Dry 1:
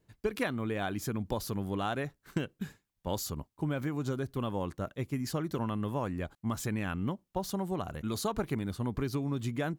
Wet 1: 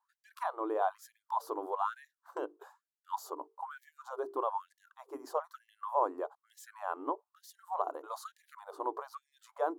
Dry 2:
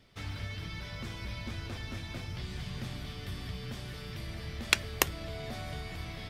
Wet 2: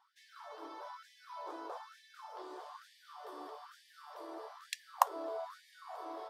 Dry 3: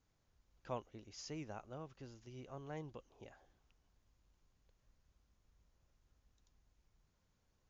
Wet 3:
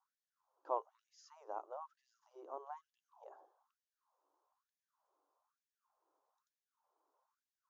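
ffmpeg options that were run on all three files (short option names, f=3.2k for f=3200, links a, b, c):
-af "highshelf=f=1.5k:t=q:w=3:g=-14,bandreject=f=50:t=h:w=6,bandreject=f=100:t=h:w=6,bandreject=f=150:t=h:w=6,bandreject=f=200:t=h:w=6,bandreject=f=250:t=h:w=6,bandreject=f=300:t=h:w=6,bandreject=f=350:t=h:w=6,bandreject=f=400:t=h:w=6,bandreject=f=450:t=h:w=6,afftfilt=real='re*gte(b*sr/1024,270*pow(1700/270,0.5+0.5*sin(2*PI*1.1*pts/sr)))':imag='im*gte(b*sr/1024,270*pow(1700/270,0.5+0.5*sin(2*PI*1.1*pts/sr)))':win_size=1024:overlap=0.75,volume=2dB"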